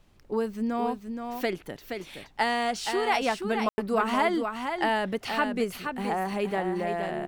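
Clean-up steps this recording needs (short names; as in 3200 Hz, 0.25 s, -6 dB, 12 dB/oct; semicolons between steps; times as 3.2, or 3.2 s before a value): room tone fill 3.69–3.78; expander -41 dBFS, range -21 dB; inverse comb 0.473 s -6.5 dB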